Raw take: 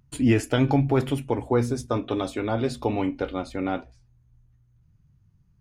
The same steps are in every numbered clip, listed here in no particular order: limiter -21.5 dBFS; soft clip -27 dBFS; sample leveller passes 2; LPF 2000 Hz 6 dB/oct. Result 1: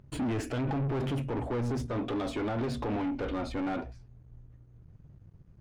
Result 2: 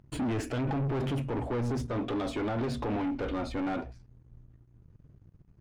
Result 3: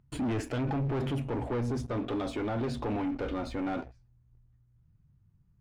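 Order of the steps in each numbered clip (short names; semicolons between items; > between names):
limiter > soft clip > sample leveller > LPF; limiter > sample leveller > soft clip > LPF; sample leveller > limiter > soft clip > LPF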